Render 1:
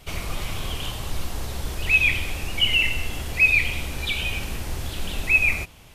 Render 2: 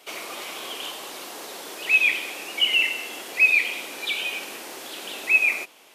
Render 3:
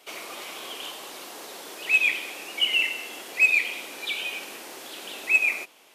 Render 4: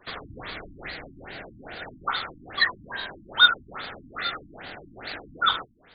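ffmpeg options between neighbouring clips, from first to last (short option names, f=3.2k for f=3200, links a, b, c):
-af "highpass=f=310:w=0.5412,highpass=f=310:w=1.3066"
-af "aeval=exprs='0.398*(cos(1*acos(clip(val(0)/0.398,-1,1)))-cos(1*PI/2))+0.0282*(cos(3*acos(clip(val(0)/0.398,-1,1)))-cos(3*PI/2))':c=same,volume=-1dB"
-af "aeval=exprs='val(0)*sin(2*PI*1100*n/s)':c=same,afftfilt=real='re*lt(b*sr/1024,300*pow(4900/300,0.5+0.5*sin(2*PI*2.4*pts/sr)))':imag='im*lt(b*sr/1024,300*pow(4900/300,0.5+0.5*sin(2*PI*2.4*pts/sr)))':win_size=1024:overlap=0.75,volume=6.5dB"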